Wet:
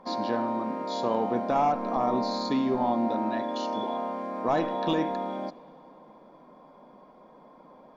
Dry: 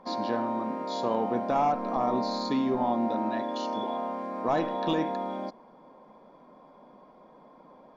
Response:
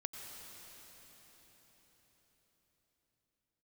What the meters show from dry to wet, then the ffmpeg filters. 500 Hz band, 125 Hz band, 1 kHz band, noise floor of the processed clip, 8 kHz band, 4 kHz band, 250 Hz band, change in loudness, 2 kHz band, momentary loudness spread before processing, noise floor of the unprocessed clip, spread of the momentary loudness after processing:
+1.0 dB, +1.0 dB, +1.0 dB, −54 dBFS, can't be measured, +1.0 dB, +1.0 dB, +1.0 dB, +1.0 dB, 6 LU, −55 dBFS, 7 LU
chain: -filter_complex "[0:a]asplit=2[link_01][link_02];[1:a]atrim=start_sample=2205,asetrate=79380,aresample=44100[link_03];[link_02][link_03]afir=irnorm=-1:irlink=0,volume=-9.5dB[link_04];[link_01][link_04]amix=inputs=2:normalize=0"

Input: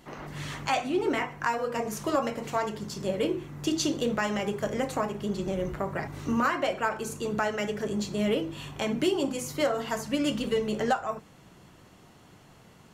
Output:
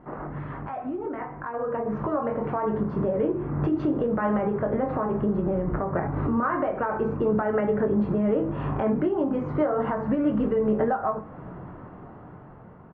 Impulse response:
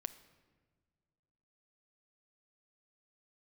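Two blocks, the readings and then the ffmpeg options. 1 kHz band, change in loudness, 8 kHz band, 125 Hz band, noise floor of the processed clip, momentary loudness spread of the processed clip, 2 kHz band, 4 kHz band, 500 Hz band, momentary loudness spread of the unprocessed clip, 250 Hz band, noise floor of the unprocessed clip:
+1.5 dB, +3.5 dB, below −40 dB, +7.5 dB, −45 dBFS, 12 LU, −4.5 dB, below −20 dB, +4.0 dB, 6 LU, +5.0 dB, −55 dBFS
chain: -filter_complex "[0:a]lowpass=frequency=1400:width=0.5412,lowpass=frequency=1400:width=1.3066,acompressor=threshold=-28dB:ratio=6,alimiter=level_in=7.5dB:limit=-24dB:level=0:latency=1:release=293,volume=-7.5dB,dynaudnorm=framelen=730:gausssize=5:maxgain=9.5dB,asplit=2[link_01][link_02];[link_02]adelay=23,volume=-8.5dB[link_03];[link_01][link_03]amix=inputs=2:normalize=0,asplit=2[link_04][link_05];[1:a]atrim=start_sample=2205,highshelf=frequency=4100:gain=10[link_06];[link_05][link_06]afir=irnorm=-1:irlink=0,volume=1.5dB[link_07];[link_04][link_07]amix=inputs=2:normalize=0"

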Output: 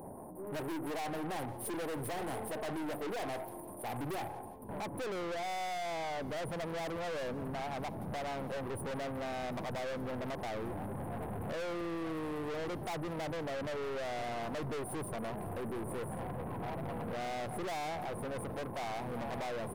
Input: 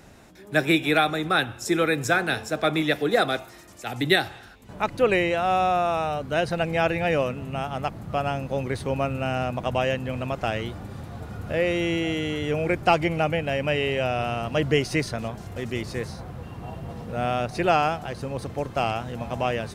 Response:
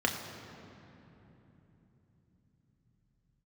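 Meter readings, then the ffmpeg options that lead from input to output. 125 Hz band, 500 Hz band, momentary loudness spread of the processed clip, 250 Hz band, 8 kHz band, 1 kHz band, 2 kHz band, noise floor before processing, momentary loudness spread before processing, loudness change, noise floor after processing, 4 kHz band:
−13.5 dB, −13.0 dB, 3 LU, −12.0 dB, −8.0 dB, −13.0 dB, −17.5 dB, −46 dBFS, 12 LU, −14.0 dB, −45 dBFS, −17.0 dB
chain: -filter_complex "[0:a]highpass=frequency=280:poles=1,afftfilt=real='re*(1-between(b*sr/4096,1100,8900))':imag='im*(1-between(b*sr/4096,1100,8900))':win_size=4096:overlap=0.75,equalizer=frequency=12000:width=3.8:gain=-6.5,asplit=2[link_01][link_02];[link_02]acompressor=threshold=-36dB:ratio=6,volume=2.5dB[link_03];[link_01][link_03]amix=inputs=2:normalize=0,aeval=exprs='(tanh(79.4*val(0)+0.3)-tanh(0.3))/79.4':channel_layout=same,asplit=2[link_04][link_05];[link_05]aecho=0:1:171|342|513:0.0944|0.0368|0.0144[link_06];[link_04][link_06]amix=inputs=2:normalize=0,volume=1dB"

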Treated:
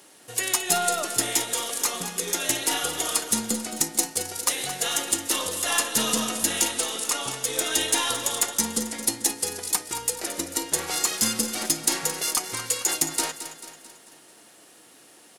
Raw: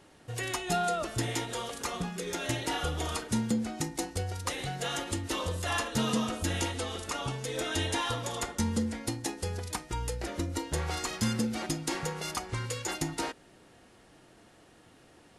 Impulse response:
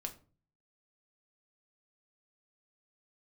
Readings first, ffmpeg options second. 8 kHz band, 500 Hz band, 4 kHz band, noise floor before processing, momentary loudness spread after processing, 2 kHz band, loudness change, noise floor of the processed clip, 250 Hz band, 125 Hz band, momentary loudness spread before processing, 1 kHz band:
+15.0 dB, +2.5 dB, +9.0 dB, −59 dBFS, 5 LU, +5.5 dB, +8.5 dB, −53 dBFS, −0.5 dB, −9.0 dB, 6 LU, +3.5 dB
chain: -filter_complex "[0:a]highpass=240,aeval=exprs='0.141*(cos(1*acos(clip(val(0)/0.141,-1,1)))-cos(1*PI/2))+0.00708*(cos(3*acos(clip(val(0)/0.141,-1,1)))-cos(3*PI/2))+0.00501*(cos(4*acos(clip(val(0)/0.141,-1,1)))-cos(4*PI/2))':channel_layout=same,aemphasis=mode=production:type=75fm,asplit=2[link_01][link_02];[link_02]aecho=0:1:221|442|663|884|1105:0.266|0.136|0.0692|0.0353|0.018[link_03];[link_01][link_03]amix=inputs=2:normalize=0,volume=4.5dB"

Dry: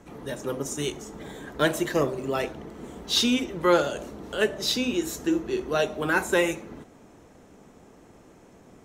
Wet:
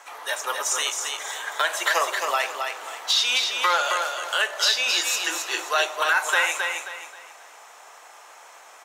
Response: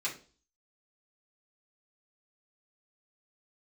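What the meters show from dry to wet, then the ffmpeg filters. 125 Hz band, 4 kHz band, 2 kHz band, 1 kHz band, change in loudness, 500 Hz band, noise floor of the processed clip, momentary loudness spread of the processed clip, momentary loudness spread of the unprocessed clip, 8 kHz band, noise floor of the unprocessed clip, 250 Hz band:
below −35 dB, +7.0 dB, +7.5 dB, +7.0 dB, +3.5 dB, −5.5 dB, −48 dBFS, 10 LU, 17 LU, +8.5 dB, −53 dBFS, −21.0 dB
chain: -filter_complex "[0:a]acrossover=split=7700[link_01][link_02];[link_02]acompressor=threshold=-47dB:ratio=4:attack=1:release=60[link_03];[link_01][link_03]amix=inputs=2:normalize=0,highpass=frequency=810:width=0.5412,highpass=frequency=810:width=1.3066,acontrast=88,alimiter=limit=-17dB:level=0:latency=1:release=243,asplit=2[link_04][link_05];[link_05]aecho=0:1:267|534|801|1068:0.562|0.18|0.0576|0.0184[link_06];[link_04][link_06]amix=inputs=2:normalize=0,volume=5.5dB"

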